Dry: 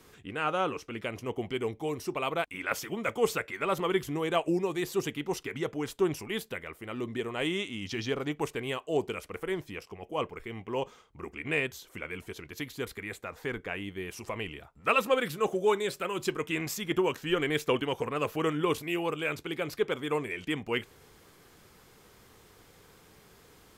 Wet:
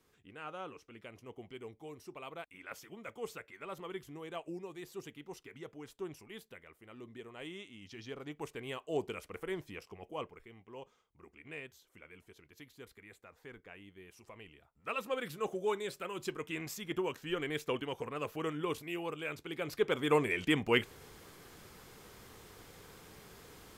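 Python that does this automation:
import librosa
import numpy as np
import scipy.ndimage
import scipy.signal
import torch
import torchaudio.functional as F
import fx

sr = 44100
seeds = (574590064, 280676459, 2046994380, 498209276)

y = fx.gain(x, sr, db=fx.line((7.93, -15.0), (8.93, -6.0), (10.04, -6.0), (10.58, -16.5), (14.58, -16.5), (15.33, -8.0), (19.42, -8.0), (20.14, 2.5)))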